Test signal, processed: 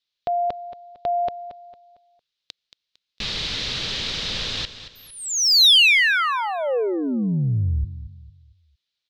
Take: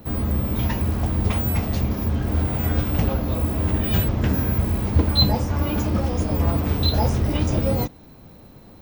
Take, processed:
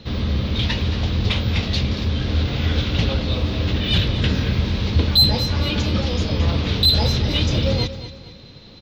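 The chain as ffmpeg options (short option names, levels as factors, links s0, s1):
-filter_complex "[0:a]firequalizer=gain_entry='entry(110,0);entry(310,-10);entry(490,-8);entry(710,-16);entry(3800,13);entry(11000,-24)':delay=0.05:min_phase=1,acontrast=59,asplit=2[s0][s1];[s1]highpass=f=720:p=1,volume=5.01,asoftclip=type=tanh:threshold=1[s2];[s0][s2]amix=inputs=2:normalize=0,lowpass=f=1400:p=1,volume=0.501,asplit=2[s3][s4];[s4]aecho=0:1:227|454|681|908:0.224|0.0828|0.0306|0.0113[s5];[s3][s5]amix=inputs=2:normalize=0"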